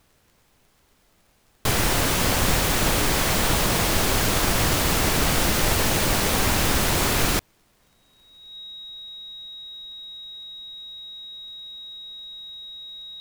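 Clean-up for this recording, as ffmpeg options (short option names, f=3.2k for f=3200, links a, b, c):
-af "adeclick=t=4,bandreject=f=3.8k:w=30,agate=range=-21dB:threshold=-54dB"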